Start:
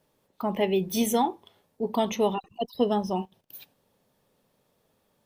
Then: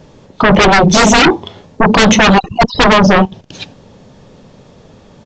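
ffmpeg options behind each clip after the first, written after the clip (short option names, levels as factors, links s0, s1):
-af "lowshelf=f=330:g=10.5,aresample=16000,aeval=exprs='0.473*sin(PI/2*7.94*val(0)/0.473)':c=same,aresample=44100,volume=1.33"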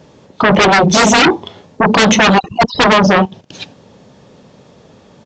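-af "highpass=f=130:p=1,volume=0.891"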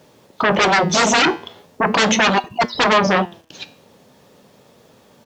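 -af "lowshelf=f=270:g=-7.5,acrusher=bits=8:mix=0:aa=0.000001,flanger=delay=8.1:depth=4.8:regen=84:speed=0.4:shape=sinusoidal"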